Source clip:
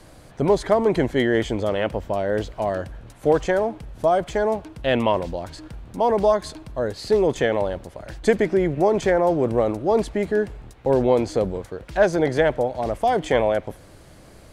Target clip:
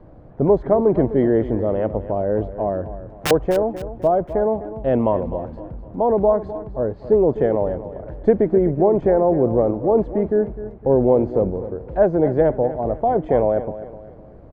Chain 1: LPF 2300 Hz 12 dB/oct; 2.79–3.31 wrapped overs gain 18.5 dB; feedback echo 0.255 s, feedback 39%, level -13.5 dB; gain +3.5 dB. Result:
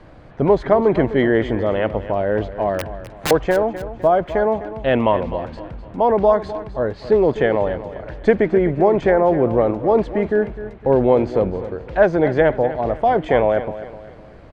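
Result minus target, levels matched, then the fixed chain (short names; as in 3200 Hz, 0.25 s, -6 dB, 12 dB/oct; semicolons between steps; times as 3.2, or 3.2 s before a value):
2000 Hz band +10.0 dB
LPF 730 Hz 12 dB/oct; 2.79–3.31 wrapped overs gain 18.5 dB; feedback echo 0.255 s, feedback 39%, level -13.5 dB; gain +3.5 dB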